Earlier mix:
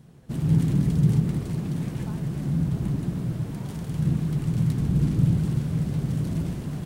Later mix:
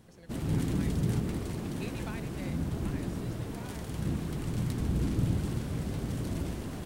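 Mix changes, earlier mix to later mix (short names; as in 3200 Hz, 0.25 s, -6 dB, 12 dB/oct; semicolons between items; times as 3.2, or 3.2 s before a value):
speech: remove band-pass 880 Hz, Q 2.3; master: add bell 150 Hz -13.5 dB 0.76 oct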